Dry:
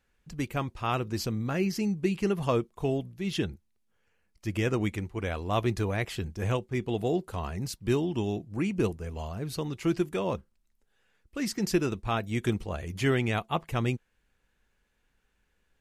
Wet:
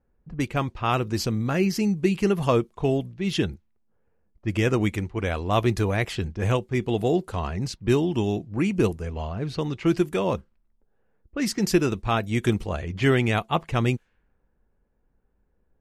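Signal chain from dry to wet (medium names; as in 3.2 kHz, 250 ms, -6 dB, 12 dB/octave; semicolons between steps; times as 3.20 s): level-controlled noise filter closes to 700 Hz, open at -27 dBFS; trim +5.5 dB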